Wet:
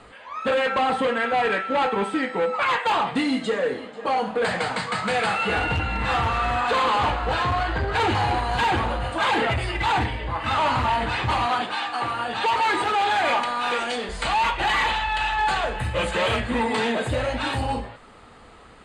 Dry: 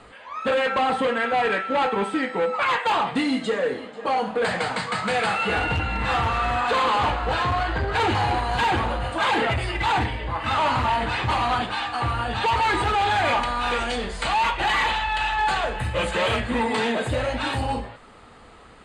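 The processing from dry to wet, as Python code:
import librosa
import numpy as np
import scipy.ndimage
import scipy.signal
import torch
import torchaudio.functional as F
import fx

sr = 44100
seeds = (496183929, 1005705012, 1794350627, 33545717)

y = fx.highpass(x, sr, hz=230.0, slope=12, at=(11.46, 14.09))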